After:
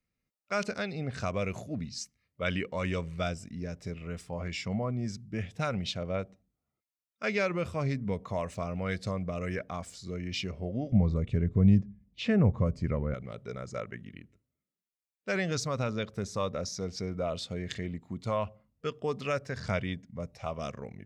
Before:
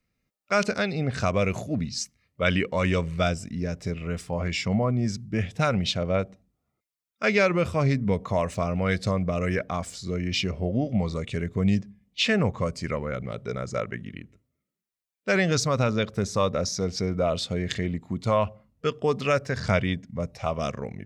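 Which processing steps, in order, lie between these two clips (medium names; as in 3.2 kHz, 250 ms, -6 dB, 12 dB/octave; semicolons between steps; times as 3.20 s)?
10.92–13.14 s: tilt EQ -3.5 dB/octave; trim -8 dB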